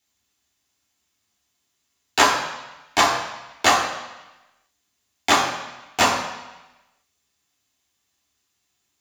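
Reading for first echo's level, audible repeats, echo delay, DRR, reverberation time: no echo audible, no echo audible, no echo audible, −4.0 dB, 1.0 s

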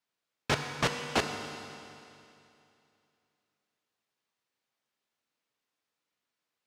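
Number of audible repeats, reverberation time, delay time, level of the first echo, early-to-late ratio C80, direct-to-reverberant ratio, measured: no echo audible, 2.7 s, no echo audible, no echo audible, 6.0 dB, 4.0 dB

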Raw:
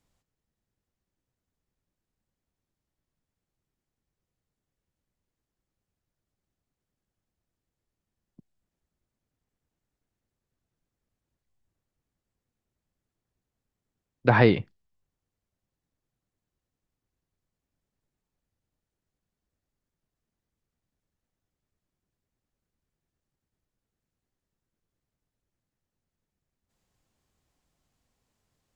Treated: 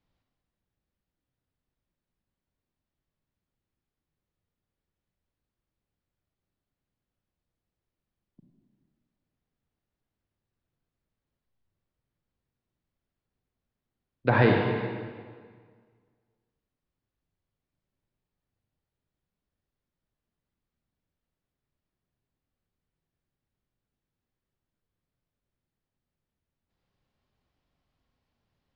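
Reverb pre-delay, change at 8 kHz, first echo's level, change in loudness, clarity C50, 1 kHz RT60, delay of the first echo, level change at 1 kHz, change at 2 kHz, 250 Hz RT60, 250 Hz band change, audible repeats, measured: 36 ms, can't be measured, no echo audible, −2.5 dB, 2.0 dB, 1.8 s, no echo audible, −1.0 dB, −1.0 dB, 1.8 s, −1.0 dB, no echo audible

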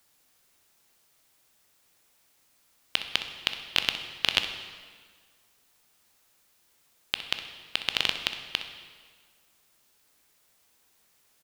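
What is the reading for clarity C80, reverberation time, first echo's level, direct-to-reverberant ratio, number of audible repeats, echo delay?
9.5 dB, 1.7 s, −12.5 dB, 6.0 dB, 1, 63 ms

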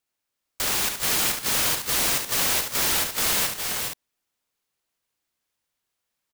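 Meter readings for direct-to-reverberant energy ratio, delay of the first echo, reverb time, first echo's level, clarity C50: no reverb audible, 71 ms, no reverb audible, −6.5 dB, no reverb audible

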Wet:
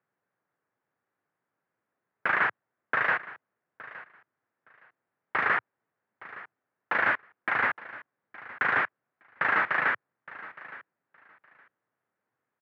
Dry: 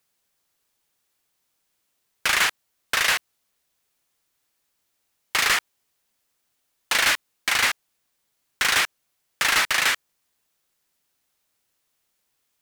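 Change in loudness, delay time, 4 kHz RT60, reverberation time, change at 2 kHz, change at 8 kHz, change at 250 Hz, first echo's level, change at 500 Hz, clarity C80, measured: −6.0 dB, 866 ms, no reverb audible, no reverb audible, −3.5 dB, below −40 dB, −0.5 dB, −18.0 dB, 0.0 dB, no reverb audible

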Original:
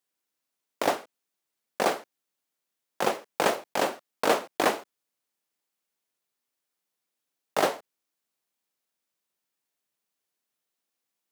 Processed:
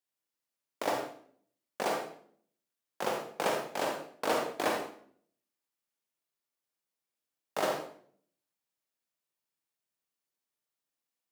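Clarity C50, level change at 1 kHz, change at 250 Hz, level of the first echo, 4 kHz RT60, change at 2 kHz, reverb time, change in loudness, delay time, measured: 3.5 dB, −5.5 dB, −5.5 dB, no echo audible, 0.45 s, −6.0 dB, 0.55 s, −5.5 dB, no echo audible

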